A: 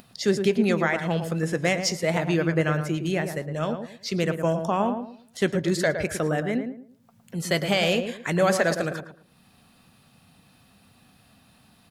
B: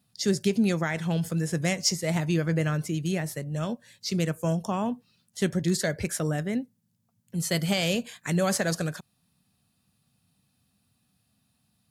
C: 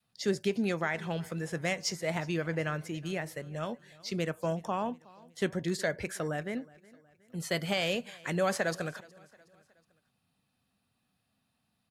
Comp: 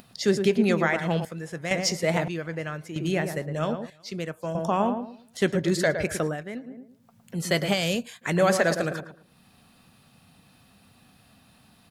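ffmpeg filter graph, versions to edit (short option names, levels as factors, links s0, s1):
-filter_complex "[2:a]asplit=4[s0][s1][s2][s3];[0:a]asplit=6[s4][s5][s6][s7][s8][s9];[s4]atrim=end=1.252[s10];[s0]atrim=start=1.248:end=1.712[s11];[s5]atrim=start=1.708:end=2.282[s12];[s1]atrim=start=2.278:end=2.962[s13];[s6]atrim=start=2.958:end=3.902[s14];[s2]atrim=start=3.898:end=4.552[s15];[s7]atrim=start=4.548:end=6.37[s16];[s3]atrim=start=6.21:end=6.78[s17];[s8]atrim=start=6.62:end=7.77[s18];[1:a]atrim=start=7.71:end=8.27[s19];[s9]atrim=start=8.21[s20];[s10][s11]acrossfade=d=0.004:c1=hsin:c2=hsin[s21];[s21][s12]acrossfade=d=0.004:c1=hsin:c2=hsin[s22];[s22][s13]acrossfade=d=0.004:c1=hsin:c2=hsin[s23];[s23][s14]acrossfade=d=0.004:c1=hsin:c2=hsin[s24];[s24][s15]acrossfade=d=0.004:c1=hsin:c2=hsin[s25];[s25][s16]acrossfade=d=0.004:c1=hsin:c2=hsin[s26];[s26][s17]acrossfade=d=0.16:c1=tri:c2=tri[s27];[s27][s18]acrossfade=d=0.16:c1=tri:c2=tri[s28];[s28][s19]acrossfade=d=0.06:c1=tri:c2=tri[s29];[s29][s20]acrossfade=d=0.06:c1=tri:c2=tri"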